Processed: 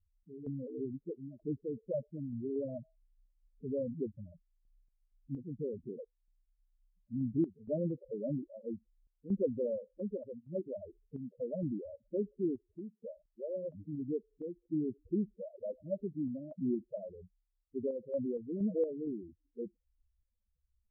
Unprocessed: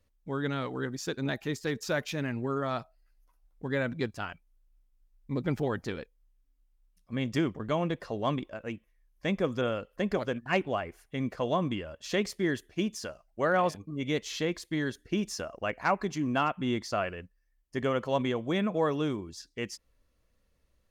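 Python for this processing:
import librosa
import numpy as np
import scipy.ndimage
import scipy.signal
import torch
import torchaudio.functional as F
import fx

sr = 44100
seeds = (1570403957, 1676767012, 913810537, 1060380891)

y = scipy.signal.sosfilt(scipy.signal.butter(16, 630.0, 'lowpass', fs=sr, output='sos'), x)
y = fx.low_shelf(y, sr, hz=150.0, db=-4.0)
y = fx.spec_topn(y, sr, count=4)
y = fx.tremolo_random(y, sr, seeds[0], hz=4.3, depth_pct=80)
y = F.gain(torch.from_numpy(y), 1.0).numpy()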